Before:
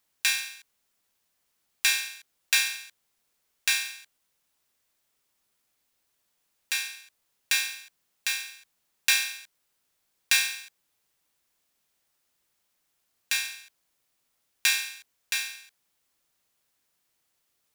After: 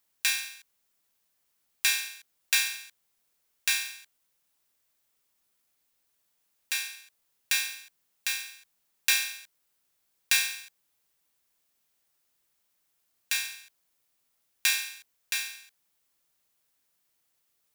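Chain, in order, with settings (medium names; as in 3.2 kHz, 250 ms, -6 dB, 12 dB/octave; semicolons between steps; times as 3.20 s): treble shelf 11 kHz +5.5 dB; trim -2.5 dB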